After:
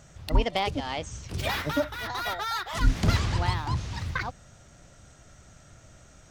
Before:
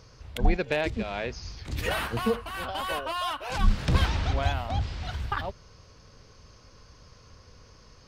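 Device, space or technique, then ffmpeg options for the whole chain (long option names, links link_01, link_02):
nightcore: -af "asetrate=56448,aresample=44100"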